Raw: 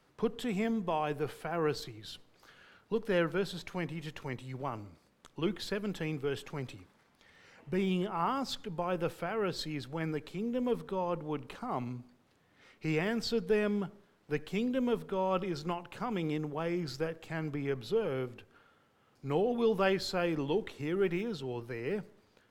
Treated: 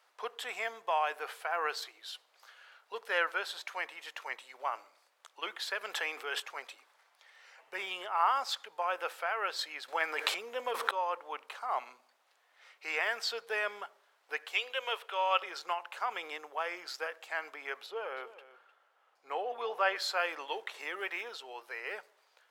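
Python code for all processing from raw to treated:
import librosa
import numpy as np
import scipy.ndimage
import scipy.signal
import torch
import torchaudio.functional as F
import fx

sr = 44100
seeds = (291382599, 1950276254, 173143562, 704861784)

y = fx.chain(x, sr, fx.highpass(hz=190.0, slope=24),
    fx.env_flatten(amount_pct=50), at=(5.81, 6.4))
y = fx.chain(y, sr, fx.transient(attack_db=4, sustain_db=12),
    fx.env_flatten(amount_pct=50), at=(9.88, 10.91))
y = fx.chain(y, sr, fx.highpass(hz=390.0, slope=24),
    fx.peak_eq(hz=2900.0, db=10.0, octaves=0.69), at=(14.53, 15.42))
y = fx.chain(y, sr, fx.high_shelf(hz=2800.0, db=-9.5),
    fx.echo_single(ms=305, db=-14.5), at=(17.86, 19.96))
y = fx.chain(y, sr, fx.notch(hz=1400.0, q=14.0),
    fx.band_squash(depth_pct=40), at=(20.74, 21.29))
y = scipy.signal.sosfilt(scipy.signal.butter(4, 630.0, 'highpass', fs=sr, output='sos'), y)
y = fx.dynamic_eq(y, sr, hz=1600.0, q=0.89, threshold_db=-50.0, ratio=4.0, max_db=5)
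y = y * librosa.db_to_amplitude(2.0)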